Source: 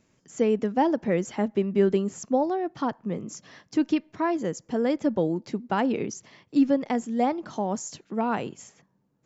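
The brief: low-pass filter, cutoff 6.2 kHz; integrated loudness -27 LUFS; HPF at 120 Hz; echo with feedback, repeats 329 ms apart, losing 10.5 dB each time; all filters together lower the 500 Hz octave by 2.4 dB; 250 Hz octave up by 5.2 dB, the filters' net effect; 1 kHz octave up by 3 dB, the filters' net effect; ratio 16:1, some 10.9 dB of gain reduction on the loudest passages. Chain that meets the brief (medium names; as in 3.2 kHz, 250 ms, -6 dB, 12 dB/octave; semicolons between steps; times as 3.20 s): high-pass 120 Hz; low-pass 6.2 kHz; peaking EQ 250 Hz +8.5 dB; peaking EQ 500 Hz -8 dB; peaking EQ 1 kHz +6.5 dB; compression 16:1, threshold -20 dBFS; feedback delay 329 ms, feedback 30%, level -10.5 dB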